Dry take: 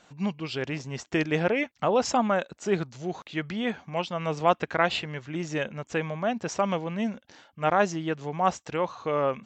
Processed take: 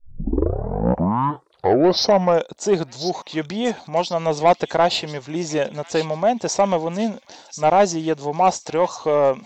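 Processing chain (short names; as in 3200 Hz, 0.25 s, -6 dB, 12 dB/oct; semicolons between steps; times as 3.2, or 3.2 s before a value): tape start at the beginning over 2.62 s; band shelf 1900 Hz -12 dB; overdrive pedal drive 14 dB, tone 6200 Hz, clips at -9.5 dBFS; thin delay 1.041 s, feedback 30%, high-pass 3100 Hz, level -9 dB; gain +5.5 dB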